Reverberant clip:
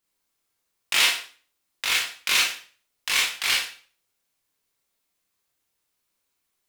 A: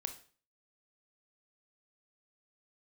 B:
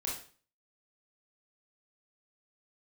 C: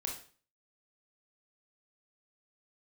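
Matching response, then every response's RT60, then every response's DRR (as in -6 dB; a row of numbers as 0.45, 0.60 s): B; 0.40, 0.40, 0.40 s; 7.0, -4.0, 0.0 dB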